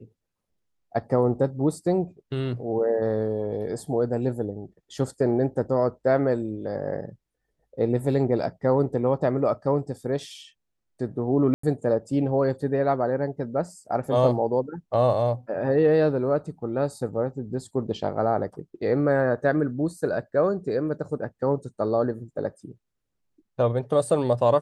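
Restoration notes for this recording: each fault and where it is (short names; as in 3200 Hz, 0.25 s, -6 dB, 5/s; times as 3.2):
11.54–11.63 gap 94 ms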